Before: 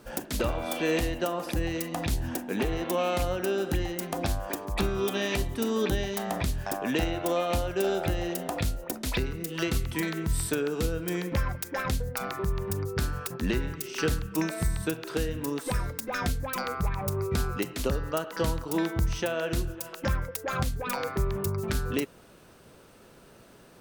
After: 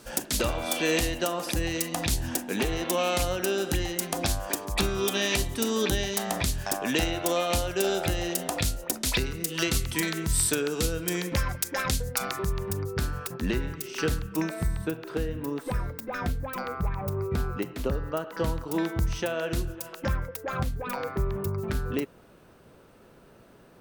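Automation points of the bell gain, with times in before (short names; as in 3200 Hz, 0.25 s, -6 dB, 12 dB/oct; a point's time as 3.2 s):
bell 7500 Hz 2.7 oct
12.36 s +9.5 dB
12.81 s -0.5 dB
14.22 s -0.5 dB
14.86 s -9.5 dB
18.13 s -9.5 dB
18.95 s -0.5 dB
19.81 s -0.5 dB
20.56 s -7.5 dB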